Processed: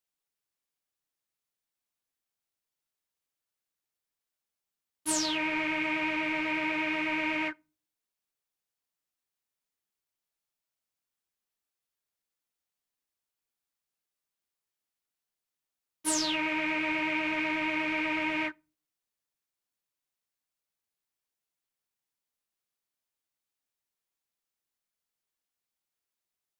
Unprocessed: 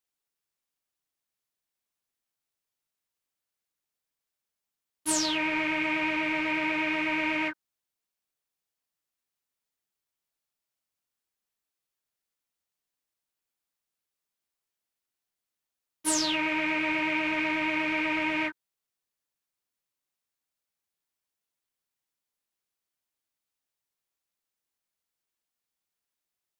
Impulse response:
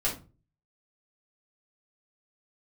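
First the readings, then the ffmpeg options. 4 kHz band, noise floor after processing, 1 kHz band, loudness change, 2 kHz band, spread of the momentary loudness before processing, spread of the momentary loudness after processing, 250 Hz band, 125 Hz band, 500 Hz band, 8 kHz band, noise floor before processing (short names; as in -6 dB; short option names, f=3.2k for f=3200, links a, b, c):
-2.0 dB, under -85 dBFS, -2.0 dB, -2.0 dB, -2.0 dB, 4 LU, 4 LU, -2.0 dB, -2.5 dB, -2.0 dB, -2.0 dB, under -85 dBFS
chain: -filter_complex "[0:a]asplit=2[a][b];[1:a]atrim=start_sample=2205[c];[b][c]afir=irnorm=-1:irlink=0,volume=-29dB[d];[a][d]amix=inputs=2:normalize=0,volume=-2.5dB"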